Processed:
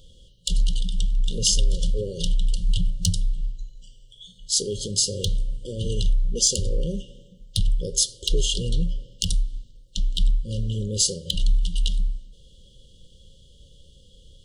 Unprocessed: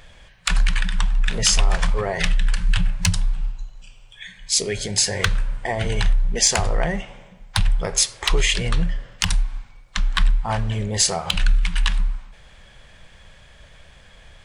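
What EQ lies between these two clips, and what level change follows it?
brick-wall FIR band-stop 570–2800 Hz; Butterworth band-stop 1.8 kHz, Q 1.3; -2.5 dB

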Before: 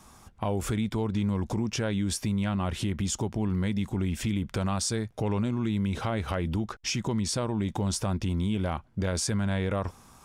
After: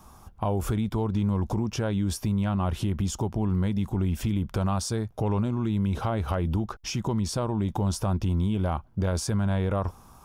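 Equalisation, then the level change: ten-band graphic EQ 125 Hz -3 dB, 250 Hz -5 dB, 500 Hz -4 dB, 2 kHz -11 dB, 4 kHz -6 dB, 8 kHz -10 dB; +6.5 dB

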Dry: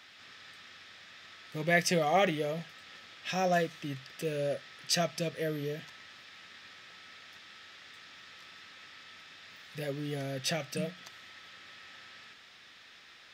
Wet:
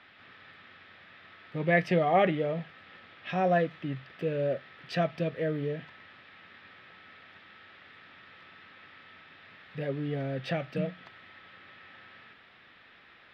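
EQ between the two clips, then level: distance through air 450 m; +4.5 dB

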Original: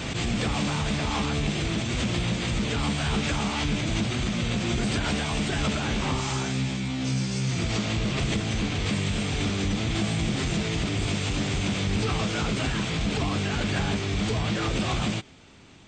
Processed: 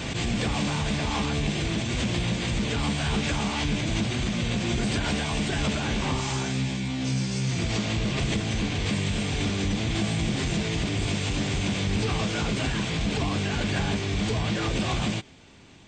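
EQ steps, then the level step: band-stop 1.3 kHz, Q 12; 0.0 dB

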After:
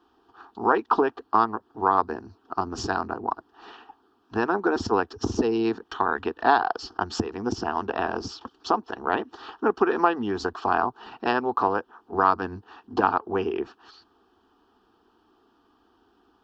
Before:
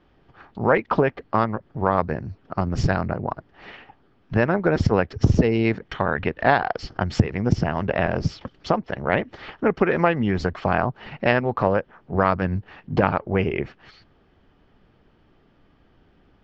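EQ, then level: high-pass 450 Hz 6 dB/octave; static phaser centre 570 Hz, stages 6; +4.0 dB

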